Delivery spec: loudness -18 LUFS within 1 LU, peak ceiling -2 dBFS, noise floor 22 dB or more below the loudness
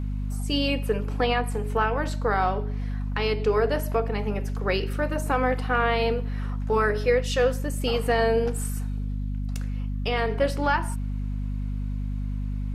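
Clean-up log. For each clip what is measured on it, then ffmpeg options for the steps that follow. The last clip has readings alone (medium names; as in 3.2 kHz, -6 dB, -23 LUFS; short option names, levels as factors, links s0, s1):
hum 50 Hz; highest harmonic 250 Hz; hum level -26 dBFS; loudness -26.5 LUFS; peak level -9.5 dBFS; loudness target -18.0 LUFS
-> -af "bandreject=f=50:t=h:w=6,bandreject=f=100:t=h:w=6,bandreject=f=150:t=h:w=6,bandreject=f=200:t=h:w=6,bandreject=f=250:t=h:w=6"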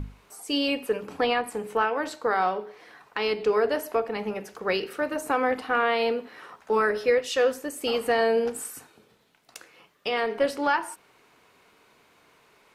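hum not found; loudness -26.5 LUFS; peak level -11.0 dBFS; loudness target -18.0 LUFS
-> -af "volume=2.66"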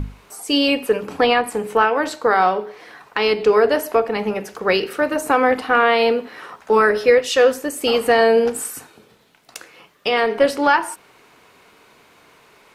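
loudness -18.0 LUFS; peak level -2.5 dBFS; noise floor -52 dBFS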